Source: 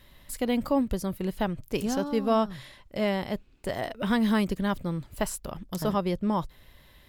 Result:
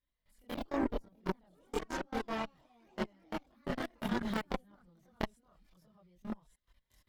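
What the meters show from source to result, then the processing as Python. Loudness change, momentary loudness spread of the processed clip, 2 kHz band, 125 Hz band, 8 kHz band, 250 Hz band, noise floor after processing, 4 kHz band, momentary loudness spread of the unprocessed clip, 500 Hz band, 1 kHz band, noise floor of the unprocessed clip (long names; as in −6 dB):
−11.0 dB, 10 LU, −7.5 dB, −13.0 dB, −16.0 dB, −12.0 dB, −85 dBFS, −10.0 dB, 10 LU, −12.0 dB, −10.0 dB, −56 dBFS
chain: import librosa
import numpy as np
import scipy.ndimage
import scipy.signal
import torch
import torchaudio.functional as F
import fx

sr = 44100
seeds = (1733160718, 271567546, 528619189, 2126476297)

p1 = fx.recorder_agc(x, sr, target_db=-16.0, rise_db_per_s=11.0, max_gain_db=30)
p2 = fx.echo_pitch(p1, sr, ms=136, semitones=3, count=3, db_per_echo=-3.0)
p3 = p2 + fx.echo_wet_highpass(p2, sr, ms=1167, feedback_pct=51, hz=3300.0, wet_db=-11, dry=0)
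p4 = fx.level_steps(p3, sr, step_db=23)
p5 = fx.high_shelf(p4, sr, hz=5600.0, db=-7.5)
p6 = fx.cheby_harmonics(p5, sr, harmonics=(2, 3, 7), levels_db=(-14, -11, -44), full_scale_db=-10.5)
p7 = fx.chorus_voices(p6, sr, voices=4, hz=0.29, base_ms=25, depth_ms=3.5, mix_pct=60)
p8 = fx.notch(p7, sr, hz=2600.0, q=28.0)
y = p8 * 10.0 ** (3.0 / 20.0)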